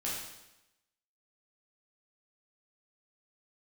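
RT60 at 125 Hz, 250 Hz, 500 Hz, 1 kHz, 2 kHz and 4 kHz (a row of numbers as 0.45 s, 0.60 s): 0.95 s, 0.95 s, 0.90 s, 0.95 s, 0.90 s, 0.90 s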